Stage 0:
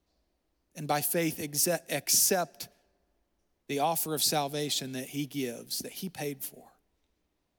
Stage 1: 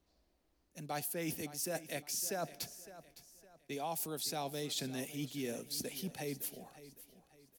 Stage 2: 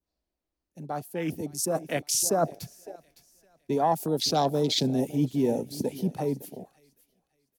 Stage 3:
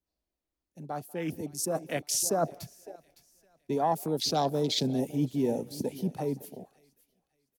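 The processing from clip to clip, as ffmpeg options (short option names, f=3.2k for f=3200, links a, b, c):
-af "areverse,acompressor=threshold=-37dB:ratio=5,areverse,aecho=1:1:560|1120|1680:0.168|0.0621|0.023"
-af "afwtdn=0.00631,adynamicequalizer=threshold=0.00126:dfrequency=2400:dqfactor=0.88:tfrequency=2400:tqfactor=0.88:attack=5:release=100:ratio=0.375:range=2:mode=cutabove:tftype=bell,dynaudnorm=f=510:g=7:m=10dB,volume=6dB"
-filter_complex "[0:a]asplit=2[a][b];[b]adelay=190,highpass=300,lowpass=3.4k,asoftclip=type=hard:threshold=-21dB,volume=-25dB[c];[a][c]amix=inputs=2:normalize=0,volume=-3dB"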